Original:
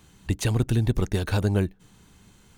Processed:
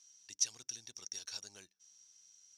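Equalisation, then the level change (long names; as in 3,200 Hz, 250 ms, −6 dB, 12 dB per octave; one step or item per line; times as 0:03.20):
resonant band-pass 5,700 Hz, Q 18
+13.0 dB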